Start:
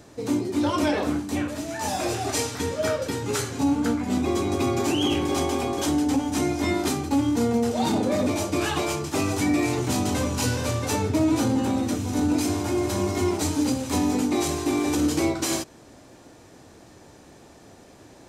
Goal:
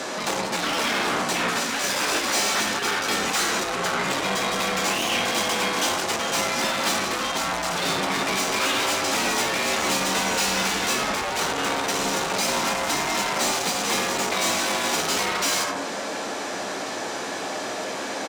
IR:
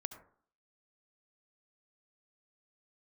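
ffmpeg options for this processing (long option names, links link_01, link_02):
-filter_complex "[0:a]equalizer=frequency=12000:width=1:gain=-3.5,asplit=2[link_01][link_02];[link_02]adelay=12,volume=-12.5dB[link_03];[link_01][link_03]amix=inputs=2:normalize=0,asplit=2[link_04][link_05];[link_05]acompressor=threshold=-33dB:ratio=6,volume=-2.5dB[link_06];[link_04][link_06]amix=inputs=2:normalize=0,afreqshift=-56[link_07];[1:a]atrim=start_sample=2205[link_08];[link_07][link_08]afir=irnorm=-1:irlink=0,areverse,acompressor=mode=upward:threshold=-48dB:ratio=2.5,areverse,asplit=2[link_09][link_10];[link_10]highpass=frequency=720:poles=1,volume=29dB,asoftclip=type=tanh:threshold=-15dB[link_11];[link_09][link_11]amix=inputs=2:normalize=0,lowpass=frequency=4700:poles=1,volume=-6dB,highpass=frequency=330:poles=1,afftfilt=real='re*lt(hypot(re,im),0.282)':imag='im*lt(hypot(re,im),0.282)':win_size=1024:overlap=0.75,volume=1.5dB"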